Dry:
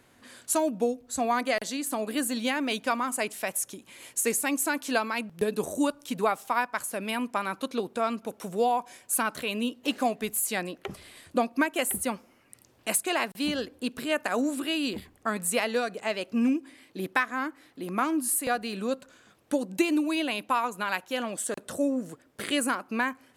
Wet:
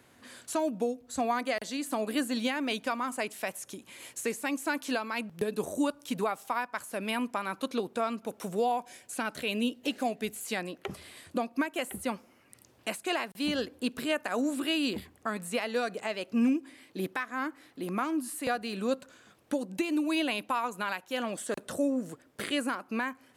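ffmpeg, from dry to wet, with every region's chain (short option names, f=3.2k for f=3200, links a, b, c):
-filter_complex "[0:a]asettb=1/sr,asplit=3[a][b][c];[a]atrim=end=8.724[d];[b]atrim=start=8.72:end=10.41,asetpts=PTS-STARTPTS,afade=t=in:d=0.004:c=qsin,afade=t=out:st=1.686:d=0.004:c=qsin,acrossover=split=9400[e][f];[f]acompressor=threshold=-44dB:ratio=4:attack=1:release=60[g];[e][g]amix=inputs=2:normalize=0,equalizer=f=1.1k:w=3:g=-7.5[h];[c]atrim=start=10.406[i];[d][h]acrossfade=d=0.004:c1=hsin:c2=qsin[j];[j][i]acrossfade=d=0.004:c1=qsin:c2=hsin,highpass=47,acrossover=split=5000[k][l];[l]acompressor=threshold=-39dB:ratio=4:attack=1:release=60[m];[k][m]amix=inputs=2:normalize=0,alimiter=limit=-19dB:level=0:latency=1:release=373"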